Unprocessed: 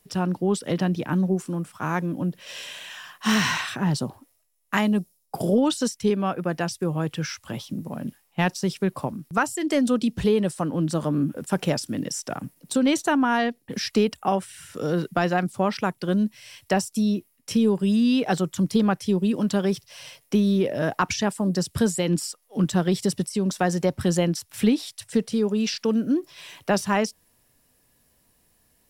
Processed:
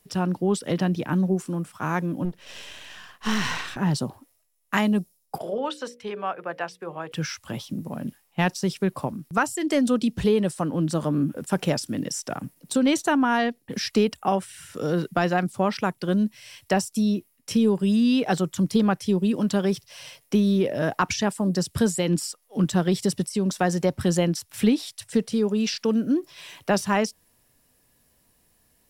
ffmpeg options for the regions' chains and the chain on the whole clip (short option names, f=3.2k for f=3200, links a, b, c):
-filter_complex "[0:a]asettb=1/sr,asplit=3[a][b][c];[a]atrim=end=2.254[d];[b]atrim=start=2.25:end=3.77,asetpts=PTS-STARTPTS,afade=t=in:d=0.004:c=qsin,afade=t=out:st=1.516:d=0.004:c=qsin,aeval=exprs='if(lt(val(0),0),0.251*val(0),val(0))':c=same,highshelf=f=8.8k:g=-7[e];[c]atrim=start=3.766[f];[d][e]acrossfade=d=0.004:c1=hsin:c2=qsin[g];[g][f]acrossfade=d=0.004:c1=qsin:c2=hsin,asettb=1/sr,asplit=3[h][i][j];[h]atrim=end=5.384[k];[i]atrim=start=5.38:end=7.12,asetpts=PTS-STARTPTS,afade=t=in:d=0.004:c=qsin,afade=t=out:st=1.736:d=0.004:c=qsin,acrossover=split=470 3300:gain=0.126 1 0.158[l][m][n];[l][m][n]amix=inputs=3:normalize=0,bandreject=f=60:t=h:w=6,bandreject=f=120:t=h:w=6,bandreject=f=180:t=h:w=6,bandreject=f=240:t=h:w=6,bandreject=f=300:t=h:w=6,bandreject=f=360:t=h:w=6,bandreject=f=420:t=h:w=6,bandreject=f=480:t=h:w=6,bandreject=f=540:t=h:w=6[o];[j]atrim=start=7.116[p];[k][o]acrossfade=d=0.004:c1=hsin:c2=qsin[q];[q][p]acrossfade=d=0.004:c1=qsin:c2=hsin"